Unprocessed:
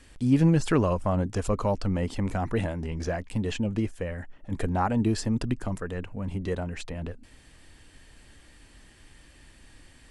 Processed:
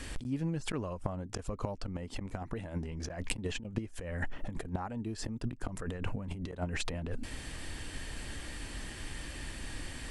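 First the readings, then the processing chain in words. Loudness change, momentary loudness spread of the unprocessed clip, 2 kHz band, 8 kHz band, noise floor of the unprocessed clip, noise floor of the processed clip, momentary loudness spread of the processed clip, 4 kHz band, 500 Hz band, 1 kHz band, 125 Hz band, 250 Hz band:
-11.5 dB, 13 LU, -3.0 dB, -1.5 dB, -55 dBFS, -46 dBFS, 7 LU, -1.0 dB, -11.5 dB, -11.5 dB, -10.0 dB, -11.5 dB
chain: inverted gate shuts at -19 dBFS, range -25 dB; compressor with a negative ratio -41 dBFS, ratio -1; trim +6 dB

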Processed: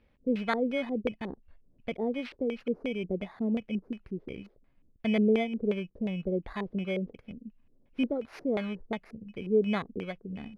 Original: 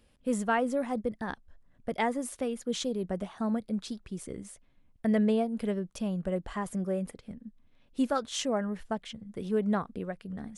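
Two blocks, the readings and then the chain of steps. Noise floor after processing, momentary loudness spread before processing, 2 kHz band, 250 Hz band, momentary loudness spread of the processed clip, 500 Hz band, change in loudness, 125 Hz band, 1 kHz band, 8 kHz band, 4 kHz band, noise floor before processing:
-66 dBFS, 14 LU, 0.0 dB, 0.0 dB, 15 LU, +1.0 dB, 0.0 dB, -0.5 dB, -5.5 dB, under -20 dB, -3.5 dB, -64 dBFS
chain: bit-reversed sample order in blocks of 16 samples; LFO low-pass square 2.8 Hz 410–2400 Hz; trim -1.5 dB

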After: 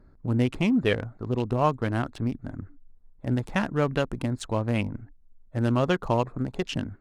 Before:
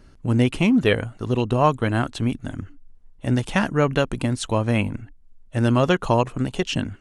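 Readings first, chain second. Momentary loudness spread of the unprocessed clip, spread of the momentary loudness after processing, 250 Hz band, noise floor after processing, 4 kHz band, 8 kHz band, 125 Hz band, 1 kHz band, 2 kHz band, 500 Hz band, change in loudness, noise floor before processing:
11 LU, 11 LU, -5.0 dB, -55 dBFS, -7.0 dB, -9.0 dB, -5.0 dB, -5.5 dB, -6.5 dB, -5.0 dB, -5.0 dB, -50 dBFS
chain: local Wiener filter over 15 samples; trim -5 dB

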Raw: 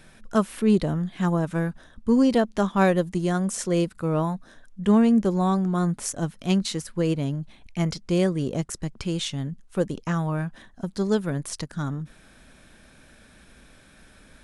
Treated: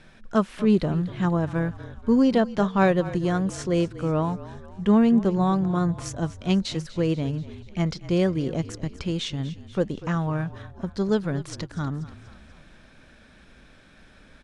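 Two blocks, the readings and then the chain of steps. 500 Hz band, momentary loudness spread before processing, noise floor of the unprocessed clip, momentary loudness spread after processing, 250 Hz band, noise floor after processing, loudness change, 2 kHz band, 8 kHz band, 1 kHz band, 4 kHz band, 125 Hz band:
0.0 dB, 11 LU, -54 dBFS, 11 LU, 0.0 dB, -53 dBFS, 0.0 dB, 0.0 dB, -7.0 dB, 0.0 dB, -1.0 dB, +0.5 dB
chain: low-pass 5.3 kHz 12 dB/octave; on a send: frequency-shifting echo 242 ms, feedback 55%, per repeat -38 Hz, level -16 dB

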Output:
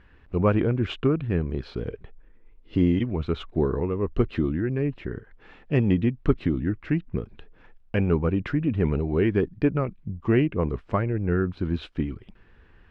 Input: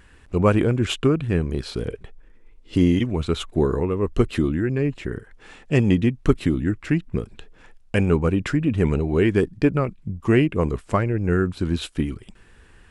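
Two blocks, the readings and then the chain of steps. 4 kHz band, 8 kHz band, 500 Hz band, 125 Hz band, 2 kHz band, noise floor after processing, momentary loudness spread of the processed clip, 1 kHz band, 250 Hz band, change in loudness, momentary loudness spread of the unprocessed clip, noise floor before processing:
-9.0 dB, no reading, -3.5 dB, -3.0 dB, -5.5 dB, -55 dBFS, 10 LU, -4.5 dB, -3.5 dB, -3.5 dB, 10 LU, -51 dBFS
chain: distance through air 270 m; trim -3 dB

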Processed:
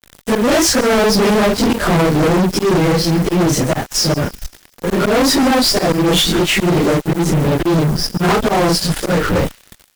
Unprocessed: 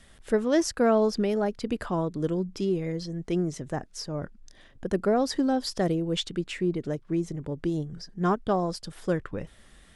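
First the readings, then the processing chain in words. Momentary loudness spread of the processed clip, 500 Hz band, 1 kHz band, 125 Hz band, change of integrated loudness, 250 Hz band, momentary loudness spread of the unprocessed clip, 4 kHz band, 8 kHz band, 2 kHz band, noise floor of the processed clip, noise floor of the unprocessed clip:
5 LU, +12.0 dB, +14.0 dB, +15.5 dB, +13.5 dB, +12.5 dB, 11 LU, +19.5 dB, +20.5 dB, +19.5 dB, -50 dBFS, -55 dBFS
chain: phase randomisation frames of 100 ms; band-stop 1.1 kHz, Q 12; slow attack 157 ms; in parallel at -11 dB: crossover distortion -47.5 dBFS; on the sum: word length cut 10-bit, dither triangular; fuzz box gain 37 dB, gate -46 dBFS; on a send: feedback echo behind a high-pass 134 ms, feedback 43%, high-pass 3.2 kHz, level -18 dB; on the sum: trim +2 dB

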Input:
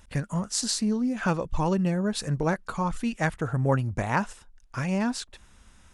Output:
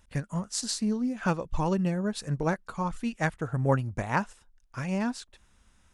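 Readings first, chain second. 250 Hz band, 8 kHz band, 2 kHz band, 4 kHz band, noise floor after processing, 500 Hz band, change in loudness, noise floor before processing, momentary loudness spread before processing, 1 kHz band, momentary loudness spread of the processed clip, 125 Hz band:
-2.5 dB, -4.0 dB, -2.5 dB, -4.5 dB, -64 dBFS, -2.0 dB, -2.5 dB, -56 dBFS, 5 LU, -2.0 dB, 6 LU, -2.5 dB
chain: upward expansion 1.5:1, over -35 dBFS

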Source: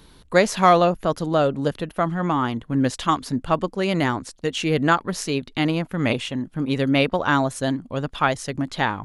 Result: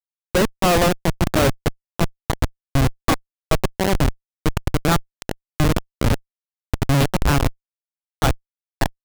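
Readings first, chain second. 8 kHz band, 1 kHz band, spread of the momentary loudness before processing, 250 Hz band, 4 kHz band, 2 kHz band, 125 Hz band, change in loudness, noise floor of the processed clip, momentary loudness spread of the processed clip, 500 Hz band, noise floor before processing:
+4.5 dB, -3.0 dB, 8 LU, -1.0 dB, +1.0 dB, -1.5 dB, +5.0 dB, +0.5 dB, under -85 dBFS, 9 LU, -1.5 dB, -53 dBFS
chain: high-pass 100 Hz 24 dB/octave; two-band feedback delay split 480 Hz, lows 308 ms, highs 547 ms, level -14 dB; Schmitt trigger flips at -16.5 dBFS; trim +7 dB

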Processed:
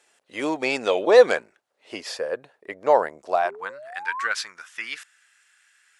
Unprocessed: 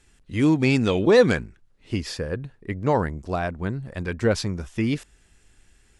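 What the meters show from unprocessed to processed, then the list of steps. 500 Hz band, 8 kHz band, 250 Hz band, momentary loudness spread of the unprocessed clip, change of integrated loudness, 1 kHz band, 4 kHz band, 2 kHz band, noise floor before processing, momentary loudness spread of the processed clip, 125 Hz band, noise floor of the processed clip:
+2.0 dB, 0.0 dB, -11.5 dB, 14 LU, +0.5 dB, +5.5 dB, +0.5 dB, +2.5 dB, -60 dBFS, 20 LU, under -25 dB, -71 dBFS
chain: painted sound rise, 3.45–4.27 s, 360–1200 Hz -29 dBFS; high-pass sweep 600 Hz -> 1.5 kHz, 3.28–3.89 s

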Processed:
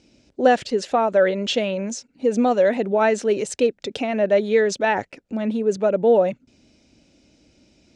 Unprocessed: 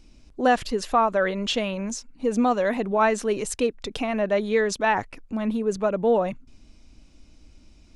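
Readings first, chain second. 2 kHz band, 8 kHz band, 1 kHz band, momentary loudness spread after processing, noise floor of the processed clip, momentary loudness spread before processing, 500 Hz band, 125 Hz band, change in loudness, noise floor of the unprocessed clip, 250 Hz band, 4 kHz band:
+1.5 dB, +0.5 dB, +0.5 dB, 8 LU, -62 dBFS, 7 LU, +5.5 dB, no reading, +3.5 dB, -54 dBFS, +2.0 dB, +2.0 dB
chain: cabinet simulation 120–8100 Hz, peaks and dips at 380 Hz +3 dB, 550 Hz +6 dB, 1.1 kHz -10 dB; trim +2 dB

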